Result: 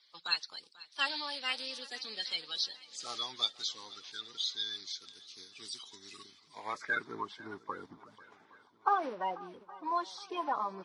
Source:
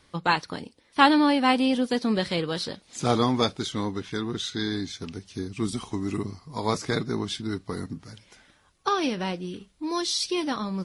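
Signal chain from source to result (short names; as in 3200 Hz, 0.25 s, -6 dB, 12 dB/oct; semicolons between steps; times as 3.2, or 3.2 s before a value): bin magnitudes rounded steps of 30 dB; band-pass sweep 4400 Hz -> 940 Hz, 6.16–7.23; swung echo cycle 0.816 s, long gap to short 1.5:1, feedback 45%, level -20 dB; gain +1.5 dB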